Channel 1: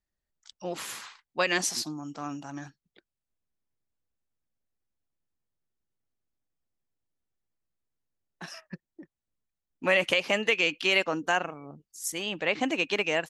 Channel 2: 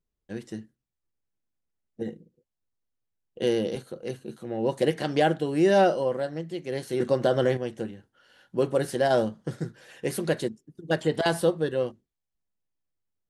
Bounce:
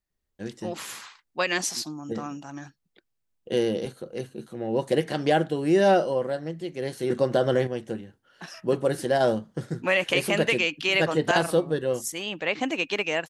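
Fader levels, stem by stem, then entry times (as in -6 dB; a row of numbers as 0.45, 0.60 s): +0.5, +0.5 dB; 0.00, 0.10 s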